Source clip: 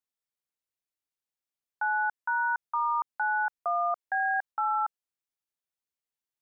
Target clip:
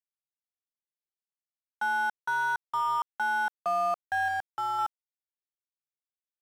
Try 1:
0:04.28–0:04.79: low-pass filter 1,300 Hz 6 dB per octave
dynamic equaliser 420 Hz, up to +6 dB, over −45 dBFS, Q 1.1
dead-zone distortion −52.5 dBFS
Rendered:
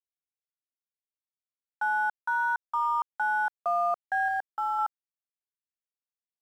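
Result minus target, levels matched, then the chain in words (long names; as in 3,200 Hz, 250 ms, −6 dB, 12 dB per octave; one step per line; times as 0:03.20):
dead-zone distortion: distortion −11 dB
0:04.28–0:04.79: low-pass filter 1,300 Hz 6 dB per octave
dynamic equaliser 420 Hz, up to +6 dB, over −45 dBFS, Q 1.1
dead-zone distortion −41 dBFS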